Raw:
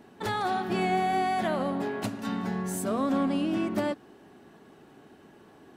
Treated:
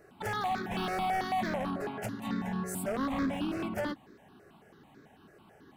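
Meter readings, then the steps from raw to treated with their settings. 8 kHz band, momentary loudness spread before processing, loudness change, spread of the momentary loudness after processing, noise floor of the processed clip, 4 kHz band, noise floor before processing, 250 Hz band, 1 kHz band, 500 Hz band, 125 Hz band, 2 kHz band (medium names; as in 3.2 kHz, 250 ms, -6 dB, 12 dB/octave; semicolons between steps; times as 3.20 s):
-4.0 dB, 6 LU, -4.5 dB, 5 LU, -59 dBFS, -3.5 dB, -55 dBFS, -5.5 dB, -4.5 dB, -6.0 dB, -3.5 dB, -2.5 dB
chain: wavefolder -23.5 dBFS; stepped phaser 9.1 Hz 900–2900 Hz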